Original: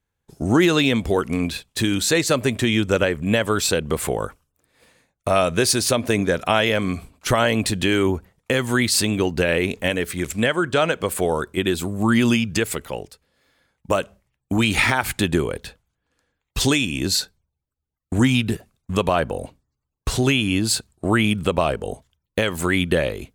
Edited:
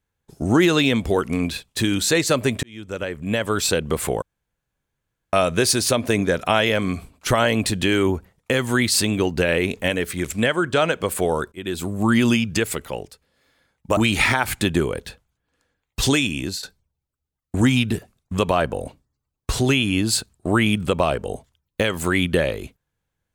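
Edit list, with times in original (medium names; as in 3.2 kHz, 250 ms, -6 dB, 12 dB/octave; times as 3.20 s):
2.63–3.69 s: fade in
4.22–5.33 s: room tone
11.52–11.89 s: fade in linear, from -23 dB
13.97–14.55 s: delete
16.91–17.21 s: fade out, to -15.5 dB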